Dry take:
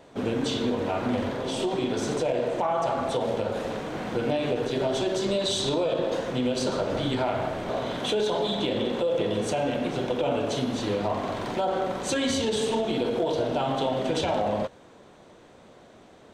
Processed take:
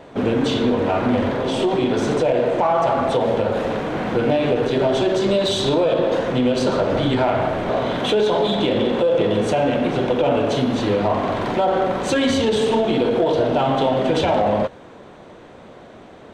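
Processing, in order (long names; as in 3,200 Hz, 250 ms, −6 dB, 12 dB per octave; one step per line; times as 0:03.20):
bass and treble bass 0 dB, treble −9 dB
in parallel at −7 dB: soft clipping −30 dBFS, distortion −8 dB
on the sum: level +6.5 dB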